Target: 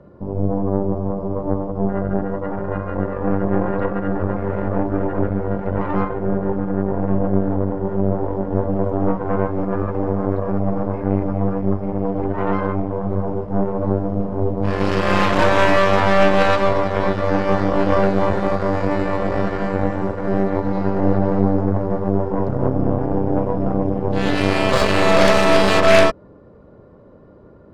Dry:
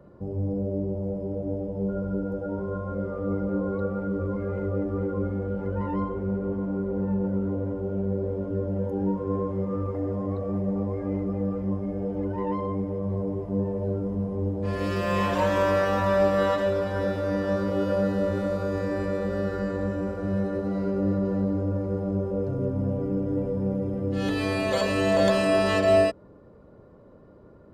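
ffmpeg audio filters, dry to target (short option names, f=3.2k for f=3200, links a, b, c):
-af "adynamicsmooth=sensitivity=6:basefreq=6.3k,aeval=exprs='0.355*(cos(1*acos(clip(val(0)/0.355,-1,1)))-cos(1*PI/2))+0.1*(cos(4*acos(clip(val(0)/0.355,-1,1)))-cos(4*PI/2))+0.158*(cos(6*acos(clip(val(0)/0.355,-1,1)))-cos(6*PI/2))':c=same,volume=5.5dB"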